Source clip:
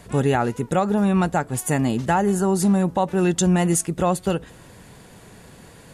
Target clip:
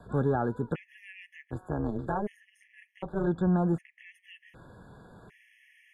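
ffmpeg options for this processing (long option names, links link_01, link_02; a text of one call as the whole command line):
ffmpeg -i in.wav -filter_complex "[0:a]asplit=3[link_01][link_02][link_03];[link_01]afade=type=out:start_time=1.41:duration=0.02[link_04];[link_02]tremolo=f=210:d=0.919,afade=type=in:start_time=1.41:duration=0.02,afade=type=out:start_time=3.26:duration=0.02[link_05];[link_03]afade=type=in:start_time=3.26:duration=0.02[link_06];[link_04][link_05][link_06]amix=inputs=3:normalize=0,acrossover=split=310|800|2200[link_07][link_08][link_09][link_10];[link_09]alimiter=limit=-23.5dB:level=0:latency=1:release=56[link_11];[link_10]acompressor=threshold=-44dB:ratio=16[link_12];[link_07][link_08][link_11][link_12]amix=inputs=4:normalize=0,asoftclip=type=tanh:threshold=-11dB,highshelf=frequency=3500:width_type=q:width=1.5:gain=-13.5,afftfilt=real='re*gt(sin(2*PI*0.66*pts/sr)*(1-2*mod(floor(b*sr/1024/1700),2)),0)':imag='im*gt(sin(2*PI*0.66*pts/sr)*(1-2*mod(floor(b*sr/1024/1700),2)),0)':win_size=1024:overlap=0.75,volume=-5.5dB" out.wav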